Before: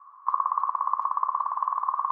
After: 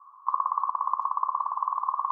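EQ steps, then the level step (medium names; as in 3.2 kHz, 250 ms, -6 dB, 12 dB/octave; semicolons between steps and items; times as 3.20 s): static phaser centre 510 Hz, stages 6; 0.0 dB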